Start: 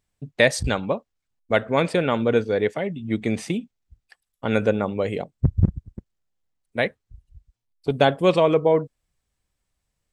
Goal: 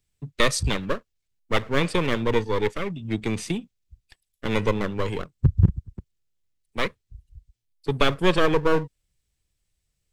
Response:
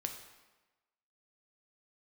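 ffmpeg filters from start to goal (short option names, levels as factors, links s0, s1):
-filter_complex "[0:a]acrossover=split=130|500|1900[s0][s1][s2][s3];[s2]aeval=exprs='abs(val(0))':c=same[s4];[s0][s1][s4][s3]amix=inputs=4:normalize=0,equalizer=f=240:w=1.9:g=-6.5,volume=1.26"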